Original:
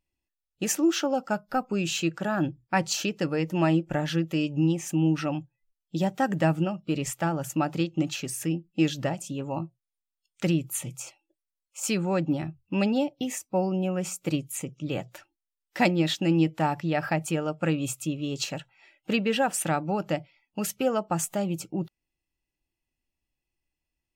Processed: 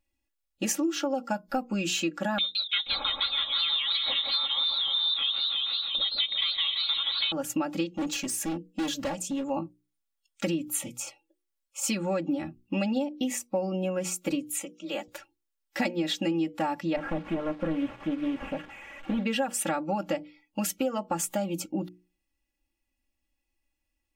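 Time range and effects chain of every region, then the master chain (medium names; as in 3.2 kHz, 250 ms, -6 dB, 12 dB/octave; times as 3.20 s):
2.38–7.32 s: frequency inversion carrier 3.9 kHz + delay 479 ms -12.5 dB + modulated delay 168 ms, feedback 63%, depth 204 cents, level -4 dB
7.94–9.50 s: peaking EQ 7 kHz +3.5 dB 0.44 oct + hard clipper -29 dBFS
14.50–15.08 s: high-pass 670 Hz 6 dB/octave + frequency shift +22 Hz
16.96–19.24 s: one-bit delta coder 16 kbps, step -41 dBFS + hysteresis with a dead band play -52 dBFS + loudspeaker Doppler distortion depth 0.41 ms
whole clip: hum notches 60/120/180/240/300/360/420/480 Hz; comb 3.6 ms, depth 95%; compression, threshold -25 dBFS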